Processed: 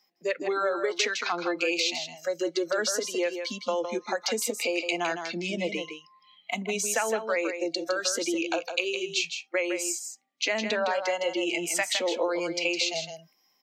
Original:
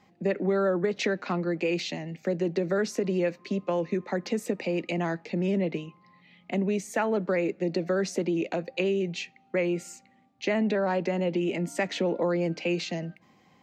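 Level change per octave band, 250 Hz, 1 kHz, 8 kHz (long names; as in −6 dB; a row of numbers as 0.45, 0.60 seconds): −5.5, +2.5, +12.5 decibels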